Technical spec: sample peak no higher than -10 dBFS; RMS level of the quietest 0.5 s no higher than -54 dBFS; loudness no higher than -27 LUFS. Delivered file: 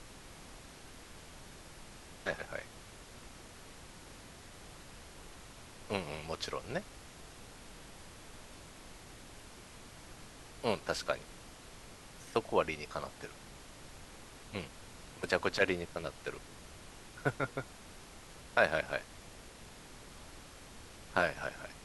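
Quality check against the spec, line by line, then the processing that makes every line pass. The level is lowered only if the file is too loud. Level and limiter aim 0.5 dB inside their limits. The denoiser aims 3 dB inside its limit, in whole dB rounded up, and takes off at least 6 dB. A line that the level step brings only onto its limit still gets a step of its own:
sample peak -11.0 dBFS: OK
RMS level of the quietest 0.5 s -52 dBFS: fail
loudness -36.5 LUFS: OK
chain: denoiser 6 dB, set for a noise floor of -52 dBFS

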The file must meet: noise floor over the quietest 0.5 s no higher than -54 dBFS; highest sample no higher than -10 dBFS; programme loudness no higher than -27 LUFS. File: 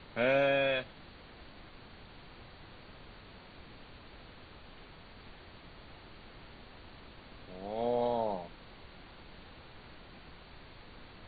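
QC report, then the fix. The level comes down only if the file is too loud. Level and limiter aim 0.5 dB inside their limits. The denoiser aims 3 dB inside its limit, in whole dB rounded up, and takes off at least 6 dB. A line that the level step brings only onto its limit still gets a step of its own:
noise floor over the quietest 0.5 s -53 dBFS: fail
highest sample -17.5 dBFS: OK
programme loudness -31.5 LUFS: OK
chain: denoiser 6 dB, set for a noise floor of -53 dBFS

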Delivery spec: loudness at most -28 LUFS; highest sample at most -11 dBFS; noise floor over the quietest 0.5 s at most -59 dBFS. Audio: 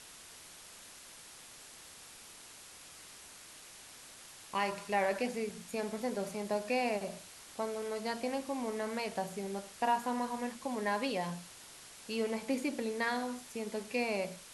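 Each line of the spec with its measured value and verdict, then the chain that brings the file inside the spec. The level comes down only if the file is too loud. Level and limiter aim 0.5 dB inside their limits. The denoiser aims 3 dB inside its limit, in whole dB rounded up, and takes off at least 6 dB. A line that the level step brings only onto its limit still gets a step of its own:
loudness -36.0 LUFS: OK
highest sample -19.5 dBFS: OK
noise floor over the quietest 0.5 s -53 dBFS: fail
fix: denoiser 9 dB, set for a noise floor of -53 dBFS

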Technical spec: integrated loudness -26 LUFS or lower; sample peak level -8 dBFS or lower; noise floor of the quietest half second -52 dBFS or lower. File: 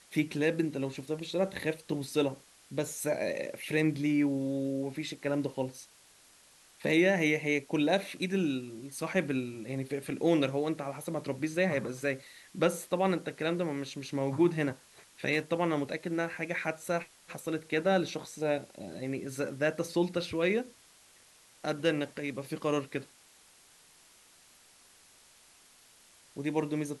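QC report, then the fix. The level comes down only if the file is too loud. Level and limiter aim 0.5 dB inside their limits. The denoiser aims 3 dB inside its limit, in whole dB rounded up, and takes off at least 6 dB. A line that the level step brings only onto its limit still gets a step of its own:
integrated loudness -32.0 LUFS: OK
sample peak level -13.5 dBFS: OK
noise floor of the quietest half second -60 dBFS: OK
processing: none

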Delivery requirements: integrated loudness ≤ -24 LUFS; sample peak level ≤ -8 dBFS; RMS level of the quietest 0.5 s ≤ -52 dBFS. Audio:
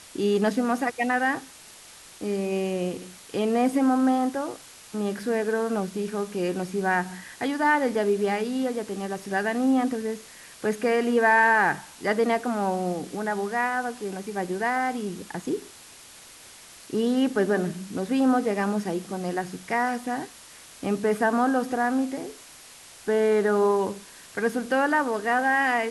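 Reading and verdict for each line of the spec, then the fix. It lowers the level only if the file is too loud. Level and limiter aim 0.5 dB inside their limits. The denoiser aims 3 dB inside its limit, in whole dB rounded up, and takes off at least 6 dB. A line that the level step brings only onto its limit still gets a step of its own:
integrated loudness -25.5 LUFS: OK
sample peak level -9.0 dBFS: OK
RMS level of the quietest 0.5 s -48 dBFS: fail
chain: denoiser 7 dB, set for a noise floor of -48 dBFS

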